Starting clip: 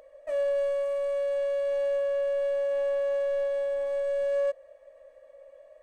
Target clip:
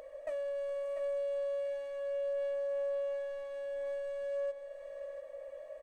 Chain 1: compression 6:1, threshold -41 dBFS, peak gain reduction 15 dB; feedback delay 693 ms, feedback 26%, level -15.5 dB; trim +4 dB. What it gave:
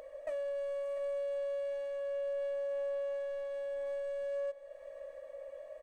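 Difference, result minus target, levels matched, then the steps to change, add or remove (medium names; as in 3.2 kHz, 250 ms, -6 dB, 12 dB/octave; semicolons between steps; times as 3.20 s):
echo-to-direct -6.5 dB
change: feedback delay 693 ms, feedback 26%, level -9 dB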